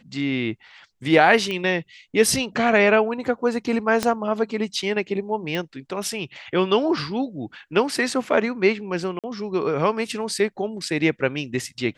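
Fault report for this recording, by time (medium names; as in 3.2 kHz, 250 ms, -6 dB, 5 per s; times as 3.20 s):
1.51 s: pop -15 dBFS
4.03 s: pop -8 dBFS
5.55 s: pop -15 dBFS
9.19–9.24 s: dropout 47 ms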